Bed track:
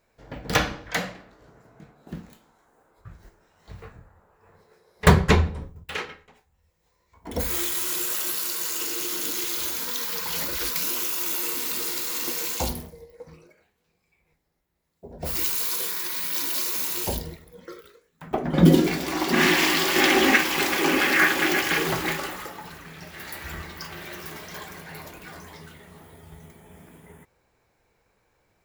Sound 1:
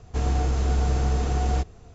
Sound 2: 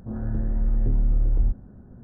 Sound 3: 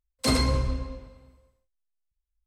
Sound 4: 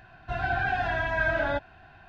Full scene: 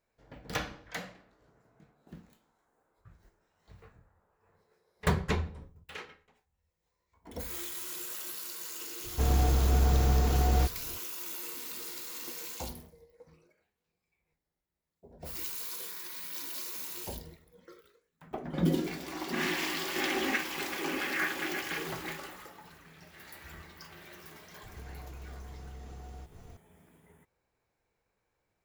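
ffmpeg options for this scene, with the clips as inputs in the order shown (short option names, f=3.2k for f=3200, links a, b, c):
-filter_complex "[1:a]asplit=2[a][b];[0:a]volume=-12.5dB[c];[b]acompressor=threshold=-41dB:ratio=6:attack=3.2:release=140:knee=1:detection=peak[d];[a]atrim=end=1.94,asetpts=PTS-STARTPTS,volume=-2dB,afade=t=in:d=0.004:c=hsin,afade=t=out:st=1.936:d=0.004:c=hsin,adelay=9040[e];[d]atrim=end=1.94,asetpts=PTS-STARTPTS,volume=-3.5dB,afade=t=in:d=0.004:c=hsin,afade=t=out:st=1.936:d=0.004:c=hsin,adelay=24630[f];[c][e][f]amix=inputs=3:normalize=0"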